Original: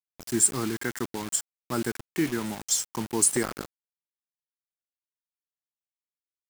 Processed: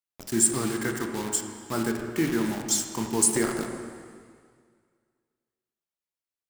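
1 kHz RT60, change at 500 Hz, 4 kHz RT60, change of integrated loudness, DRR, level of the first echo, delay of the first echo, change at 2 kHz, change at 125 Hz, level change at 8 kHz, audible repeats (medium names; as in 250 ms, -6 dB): 1.9 s, +3.0 dB, 1.9 s, +1.0 dB, 3.0 dB, no echo, no echo, +1.5 dB, +2.0 dB, 0.0 dB, no echo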